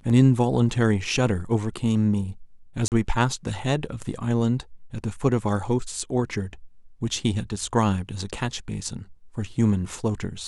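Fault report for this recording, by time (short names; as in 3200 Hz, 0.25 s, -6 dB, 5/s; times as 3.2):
2.88–2.92 gap 38 ms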